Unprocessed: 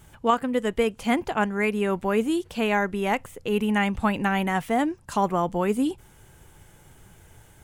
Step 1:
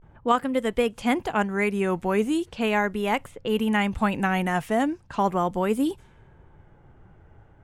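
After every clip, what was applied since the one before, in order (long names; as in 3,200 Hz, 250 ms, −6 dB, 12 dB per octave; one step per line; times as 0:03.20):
pitch vibrato 0.38 Hz 75 cents
low-pass that shuts in the quiet parts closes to 1,100 Hz, open at −23 dBFS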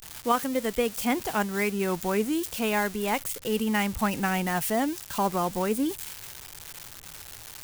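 spike at every zero crossing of −21.5 dBFS
level −3 dB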